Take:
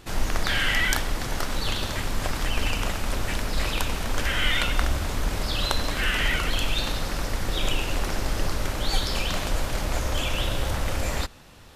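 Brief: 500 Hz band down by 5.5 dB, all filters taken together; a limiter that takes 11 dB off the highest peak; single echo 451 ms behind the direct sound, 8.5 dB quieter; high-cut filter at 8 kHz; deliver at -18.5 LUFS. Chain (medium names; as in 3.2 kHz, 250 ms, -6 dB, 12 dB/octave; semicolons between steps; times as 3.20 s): low-pass 8 kHz; peaking EQ 500 Hz -7 dB; peak limiter -16.5 dBFS; delay 451 ms -8.5 dB; trim +10 dB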